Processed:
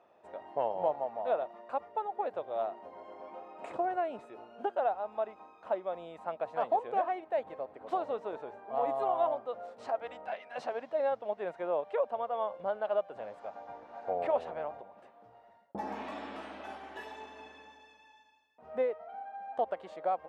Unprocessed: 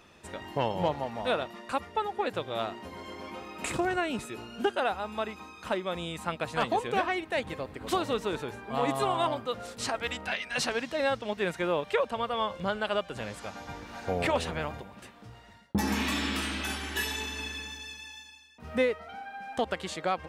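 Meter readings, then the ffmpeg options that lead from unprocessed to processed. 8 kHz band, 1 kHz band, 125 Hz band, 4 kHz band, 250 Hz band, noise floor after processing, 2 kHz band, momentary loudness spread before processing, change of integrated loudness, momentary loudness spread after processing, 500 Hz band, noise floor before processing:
below −25 dB, −2.0 dB, below −15 dB, below −20 dB, −13.0 dB, −61 dBFS, −14.5 dB, 13 LU, −3.5 dB, 15 LU, −1.5 dB, −52 dBFS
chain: -af "bandpass=frequency=670:width_type=q:width=2.8:csg=0,volume=2dB"

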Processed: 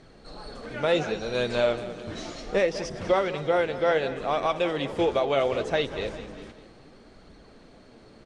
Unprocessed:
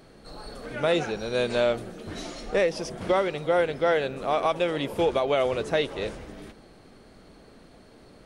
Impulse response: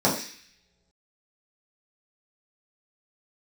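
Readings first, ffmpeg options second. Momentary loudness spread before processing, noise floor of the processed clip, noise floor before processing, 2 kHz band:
14 LU, −52 dBFS, −52 dBFS, 0.0 dB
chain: -af "aecho=1:1:199|398|597|796:0.2|0.0938|0.0441|0.0207,flanger=delay=0.5:depth=8.8:regen=68:speed=0.68:shape=sinusoidal,lowpass=frequency=8000:width=0.5412,lowpass=frequency=8000:width=1.3066,volume=4dB"

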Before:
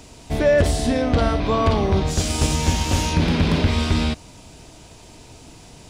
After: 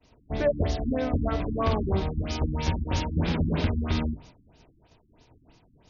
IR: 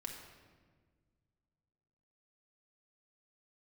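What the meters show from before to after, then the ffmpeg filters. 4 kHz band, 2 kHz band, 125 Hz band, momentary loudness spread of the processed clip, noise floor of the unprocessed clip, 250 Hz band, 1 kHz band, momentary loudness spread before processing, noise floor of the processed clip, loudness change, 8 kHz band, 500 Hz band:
−11.5 dB, −10.5 dB, −6.5 dB, 4 LU, −45 dBFS, −7.0 dB, −8.5 dB, 4 LU, −62 dBFS, −8.0 dB, −19.5 dB, −8.5 dB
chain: -af "bandreject=frequency=50:width_type=h:width=6,bandreject=frequency=100:width_type=h:width=6,bandreject=frequency=150:width_type=h:width=6,bandreject=frequency=200:width_type=h:width=6,bandreject=frequency=250:width_type=h:width=6,bandreject=frequency=300:width_type=h:width=6,bandreject=frequency=350:width_type=h:width=6,bandreject=frequency=400:width_type=h:width=6,agate=range=-33dB:threshold=-37dB:ratio=3:detection=peak,afftfilt=real='re*lt(b*sr/1024,320*pow(7000/320,0.5+0.5*sin(2*PI*3.1*pts/sr)))':imag='im*lt(b*sr/1024,320*pow(7000/320,0.5+0.5*sin(2*PI*3.1*pts/sr)))':win_size=1024:overlap=0.75,volume=-6dB"

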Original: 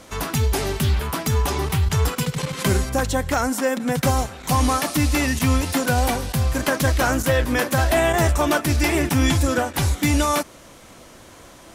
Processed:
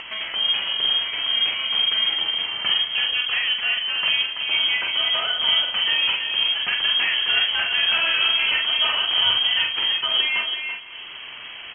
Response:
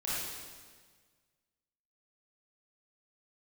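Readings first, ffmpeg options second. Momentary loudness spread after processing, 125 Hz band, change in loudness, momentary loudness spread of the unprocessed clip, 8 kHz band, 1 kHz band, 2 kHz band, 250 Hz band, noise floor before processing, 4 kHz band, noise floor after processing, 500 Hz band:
5 LU, below −30 dB, +2.0 dB, 4 LU, below −40 dB, −9.0 dB, +3.5 dB, below −25 dB, −45 dBFS, +14.5 dB, −37 dBFS, −17.5 dB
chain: -filter_complex "[0:a]asplit=2[link_01][link_02];[link_02]adelay=332.4,volume=-6dB,highshelf=frequency=4000:gain=-7.48[link_03];[link_01][link_03]amix=inputs=2:normalize=0,aresample=16000,acrusher=bits=3:mode=log:mix=0:aa=0.000001,aresample=44100,asplit=2[link_04][link_05];[link_05]adelay=46,volume=-4dB[link_06];[link_04][link_06]amix=inputs=2:normalize=0,asplit=2[link_07][link_08];[1:a]atrim=start_sample=2205,adelay=96[link_09];[link_08][link_09]afir=irnorm=-1:irlink=0,volume=-24dB[link_10];[link_07][link_10]amix=inputs=2:normalize=0,lowpass=frequency=2800:width_type=q:width=0.5098,lowpass=frequency=2800:width_type=q:width=0.6013,lowpass=frequency=2800:width_type=q:width=0.9,lowpass=frequency=2800:width_type=q:width=2.563,afreqshift=-3300,acompressor=mode=upward:threshold=-21dB:ratio=2.5,volume=-4.5dB"

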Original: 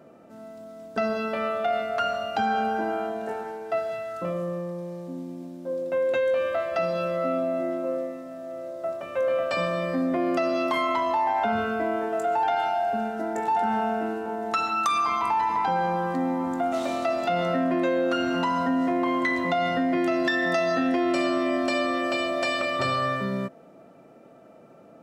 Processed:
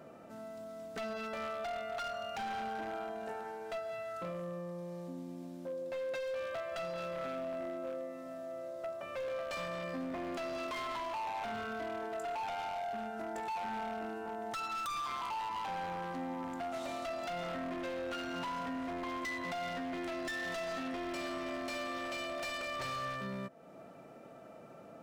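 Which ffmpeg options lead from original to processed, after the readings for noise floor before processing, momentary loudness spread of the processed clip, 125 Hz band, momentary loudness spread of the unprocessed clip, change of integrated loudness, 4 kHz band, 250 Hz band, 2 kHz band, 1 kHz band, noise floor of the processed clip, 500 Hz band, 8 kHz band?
−51 dBFS, 7 LU, −12.5 dB, 9 LU, −13.5 dB, −10.0 dB, −15.5 dB, −11.5 dB, −13.0 dB, −53 dBFS, −13.5 dB, −7.0 dB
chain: -af "equalizer=frequency=310:width=0.67:gain=-5,acompressor=threshold=-46dB:ratio=2,aeval=exprs='0.0188*(abs(mod(val(0)/0.0188+3,4)-2)-1)':channel_layout=same,volume=1dB"

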